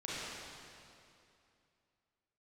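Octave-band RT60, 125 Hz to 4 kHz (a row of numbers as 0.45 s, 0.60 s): 2.8 s, 2.8 s, 2.7 s, 2.6 s, 2.4 s, 2.3 s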